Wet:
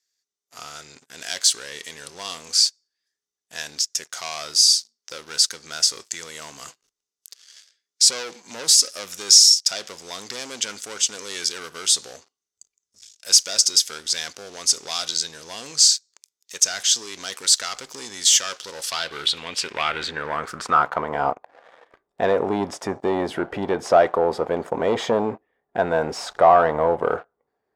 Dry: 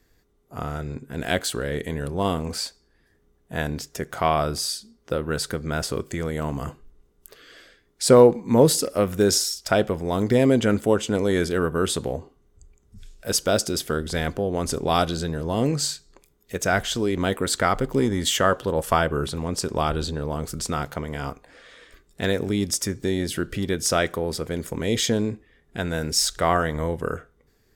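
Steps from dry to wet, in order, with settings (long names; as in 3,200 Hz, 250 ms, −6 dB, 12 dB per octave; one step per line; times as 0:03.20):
in parallel at −0.5 dB: brickwall limiter −13.5 dBFS, peak gain reduction 10 dB
on the sum: leveller curve on the samples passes 3
band-pass filter sweep 5,800 Hz → 770 Hz, 0:18.65–0:21.28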